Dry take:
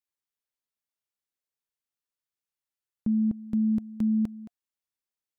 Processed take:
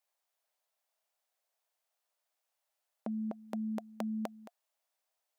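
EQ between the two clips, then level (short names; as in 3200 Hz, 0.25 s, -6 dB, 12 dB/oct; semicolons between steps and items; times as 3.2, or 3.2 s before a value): resonant high-pass 660 Hz, resonance Q 4; +6.0 dB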